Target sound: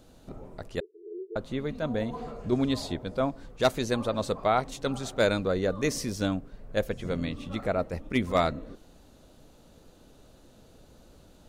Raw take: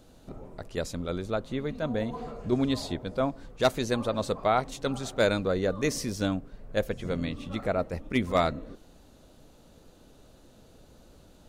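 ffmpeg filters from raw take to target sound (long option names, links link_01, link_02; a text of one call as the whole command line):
ffmpeg -i in.wav -filter_complex "[0:a]asettb=1/sr,asplit=3[link_01][link_02][link_03];[link_01]atrim=end=0.804[link_04];[link_02]atrim=start=0.8:end=1.36,asetpts=PTS-STARTPTS,afade=type=in:duration=0.004:curve=qsin,afade=type=out:start_time=0.556:duration=0.004:curve=qsin,asuperpass=centerf=390:order=12:qfactor=3.5[link_05];[link_03]atrim=start=1.356[link_06];[link_04][link_05]acrossfade=duration=0.004:curve1=hsin:curve2=qsin[link_07];[link_07][link_06]acrossfade=duration=0.004:curve1=qsin:curve2=hsin" out.wav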